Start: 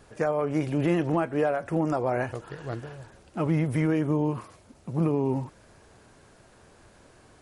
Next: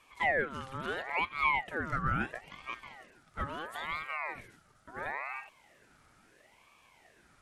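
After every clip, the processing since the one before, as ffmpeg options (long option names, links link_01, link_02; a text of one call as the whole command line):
ffmpeg -i in.wav -af "lowshelf=frequency=420:width_type=q:width=3:gain=-9.5,aeval=exprs='val(0)*sin(2*PI*1200*n/s+1200*0.45/0.74*sin(2*PI*0.74*n/s))':channel_layout=same,volume=-5dB" out.wav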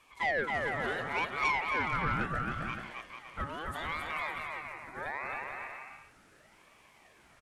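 ffmpeg -i in.wav -filter_complex "[0:a]asplit=2[link_01][link_02];[link_02]aecho=0:1:270|445.5|559.6|633.7|681.9:0.631|0.398|0.251|0.158|0.1[link_03];[link_01][link_03]amix=inputs=2:normalize=0,asoftclip=type=tanh:threshold=-21.5dB" out.wav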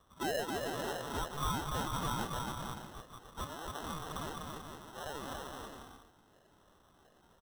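ffmpeg -i in.wav -af "acrusher=samples=19:mix=1:aa=0.000001,volume=-4.5dB" out.wav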